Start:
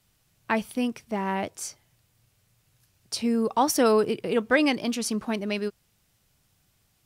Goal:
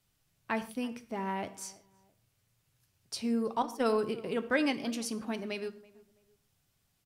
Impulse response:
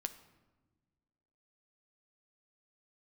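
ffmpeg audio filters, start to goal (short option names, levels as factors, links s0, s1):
-filter_complex "[0:a]asettb=1/sr,asplit=3[s0][s1][s2];[s0]atrim=end=3.624[s3];[s1]atrim=start=3.62:end=4.03,asetpts=PTS-STARTPTS,afade=t=in:d=0.004:c=qsin,afade=t=out:st=0.406:d=0.004:c=qsin,agate=range=0.158:threshold=0.1:ratio=16:detection=peak[s4];[s2]atrim=start=4.026[s5];[s3][s4]acrossfade=d=0.004:c1=hsin:c2=qsin[s6];[s6][s5]acrossfade=d=0.004:c1=qsin:c2=hsin,asplit=2[s7][s8];[s8]adelay=331,lowpass=f=1400:p=1,volume=0.0891,asplit=2[s9][s10];[s10]adelay=331,lowpass=f=1400:p=1,volume=0.32[s11];[s7][s9][s11]amix=inputs=3:normalize=0[s12];[1:a]atrim=start_sample=2205,afade=t=out:st=0.2:d=0.01,atrim=end_sample=9261[s13];[s12][s13]afir=irnorm=-1:irlink=0,volume=0.501"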